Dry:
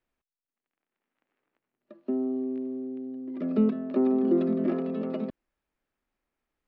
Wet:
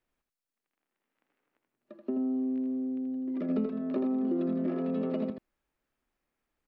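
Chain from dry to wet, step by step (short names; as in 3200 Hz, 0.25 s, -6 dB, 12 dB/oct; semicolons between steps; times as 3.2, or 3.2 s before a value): compressor 5:1, threshold -29 dBFS, peak gain reduction 10 dB; on a send: echo 81 ms -6 dB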